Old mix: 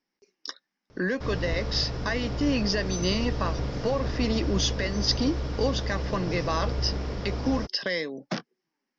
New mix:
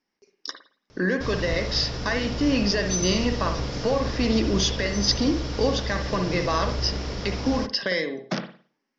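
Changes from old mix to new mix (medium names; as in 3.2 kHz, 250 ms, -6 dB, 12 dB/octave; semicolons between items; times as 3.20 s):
background: add treble shelf 2.8 kHz +10.5 dB; reverb: on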